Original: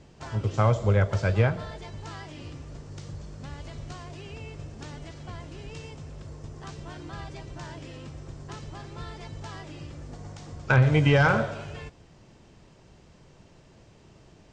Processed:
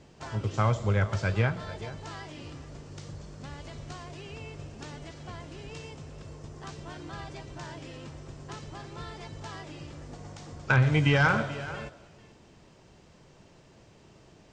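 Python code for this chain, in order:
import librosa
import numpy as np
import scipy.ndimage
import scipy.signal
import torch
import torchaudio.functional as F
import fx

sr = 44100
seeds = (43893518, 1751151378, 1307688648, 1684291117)

y = fx.low_shelf(x, sr, hz=120.0, db=-6.0)
y = y + 10.0 ** (-17.0 / 20.0) * np.pad(y, (int(436 * sr / 1000.0), 0))[:len(y)]
y = fx.dynamic_eq(y, sr, hz=540.0, q=1.2, threshold_db=-38.0, ratio=4.0, max_db=-6)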